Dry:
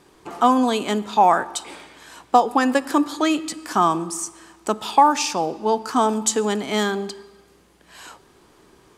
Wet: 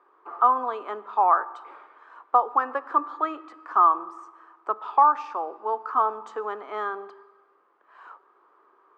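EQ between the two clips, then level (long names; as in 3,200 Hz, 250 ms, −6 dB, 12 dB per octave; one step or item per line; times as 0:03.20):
four-pole ladder high-pass 320 Hz, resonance 40%
low-pass with resonance 1,200 Hz, resonance Q 4.6
tilt shelving filter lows −6.5 dB, about 760 Hz
−5.0 dB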